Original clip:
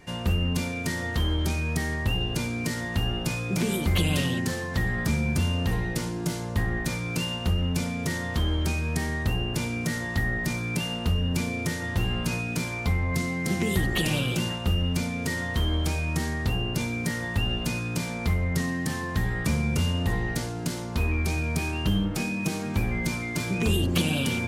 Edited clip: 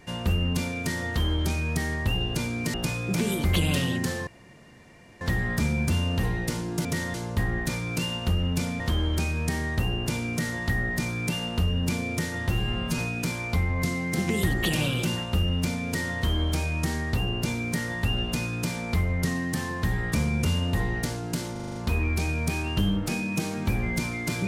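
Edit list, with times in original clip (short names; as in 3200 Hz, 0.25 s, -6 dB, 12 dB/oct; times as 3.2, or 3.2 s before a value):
2.74–3.16 cut
4.69 insert room tone 0.94 s
7.99–8.28 move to 6.33
12–12.31 stretch 1.5×
20.84 stutter 0.04 s, 7 plays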